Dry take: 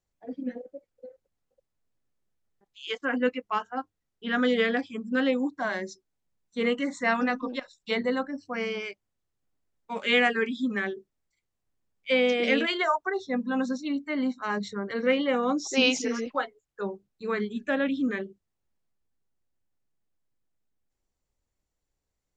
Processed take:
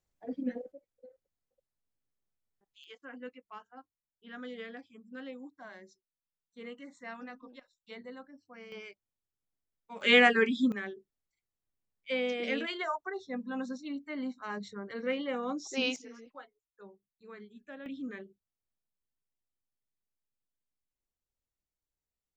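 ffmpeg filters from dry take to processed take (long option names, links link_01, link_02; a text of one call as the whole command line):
ffmpeg -i in.wav -af "asetnsamples=nb_out_samples=441:pad=0,asendcmd='0.72 volume volume -9dB;2.84 volume volume -19dB;8.72 volume volume -11.5dB;10.01 volume volume 1dB;10.72 volume volume -9dB;15.96 volume volume -20dB;17.86 volume volume -12.5dB',volume=-1dB" out.wav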